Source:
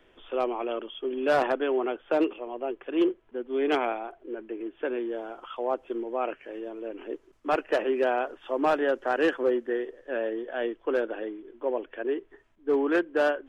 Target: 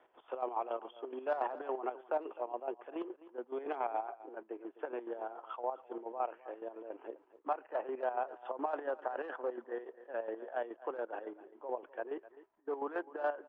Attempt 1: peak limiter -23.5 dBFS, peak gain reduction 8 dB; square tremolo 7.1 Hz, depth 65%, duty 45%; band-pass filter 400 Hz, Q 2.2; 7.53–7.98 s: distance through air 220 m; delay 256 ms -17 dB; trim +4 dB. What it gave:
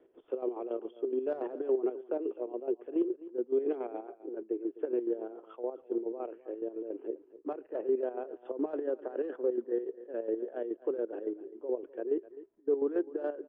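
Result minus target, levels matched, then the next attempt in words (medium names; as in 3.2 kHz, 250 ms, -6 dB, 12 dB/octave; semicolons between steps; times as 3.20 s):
1 kHz band -14.5 dB
peak limiter -23.5 dBFS, peak gain reduction 8 dB; square tremolo 7.1 Hz, depth 65%, duty 45%; band-pass filter 850 Hz, Q 2.2; 7.53–7.98 s: distance through air 220 m; delay 256 ms -17 dB; trim +4 dB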